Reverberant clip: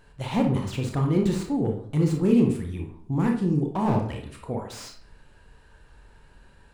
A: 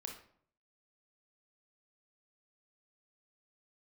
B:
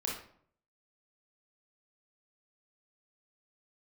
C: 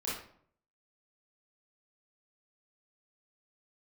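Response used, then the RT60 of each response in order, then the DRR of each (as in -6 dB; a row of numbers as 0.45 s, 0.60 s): A; 0.60 s, 0.60 s, 0.60 s; 1.5 dB, -3.0 dB, -8.5 dB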